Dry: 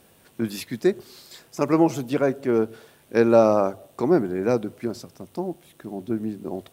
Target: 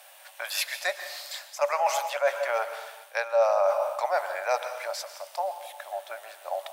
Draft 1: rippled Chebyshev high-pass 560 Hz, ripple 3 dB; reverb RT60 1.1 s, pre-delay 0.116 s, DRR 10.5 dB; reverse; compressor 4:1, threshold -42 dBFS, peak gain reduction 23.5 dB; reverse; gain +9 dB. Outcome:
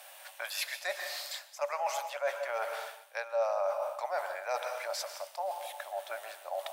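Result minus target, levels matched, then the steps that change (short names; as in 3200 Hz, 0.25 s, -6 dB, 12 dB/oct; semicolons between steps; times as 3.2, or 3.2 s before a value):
compressor: peak gain reduction +8 dB
change: compressor 4:1, threshold -31 dBFS, peak gain reduction 15 dB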